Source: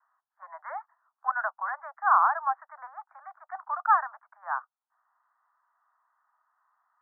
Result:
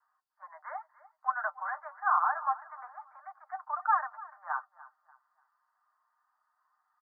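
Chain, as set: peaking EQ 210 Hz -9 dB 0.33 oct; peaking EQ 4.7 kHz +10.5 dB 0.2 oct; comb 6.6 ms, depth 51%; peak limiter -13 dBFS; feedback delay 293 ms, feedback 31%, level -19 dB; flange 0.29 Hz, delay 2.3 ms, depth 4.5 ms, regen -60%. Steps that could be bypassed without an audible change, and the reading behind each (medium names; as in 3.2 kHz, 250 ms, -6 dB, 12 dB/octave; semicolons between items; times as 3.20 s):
peaking EQ 210 Hz: input has nothing below 570 Hz; peaking EQ 4.7 kHz: input has nothing above 1.9 kHz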